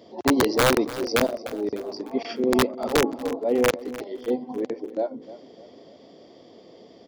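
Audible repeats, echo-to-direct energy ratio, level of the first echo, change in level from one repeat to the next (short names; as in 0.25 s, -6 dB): 3, -15.5 dB, -16.5 dB, -7.0 dB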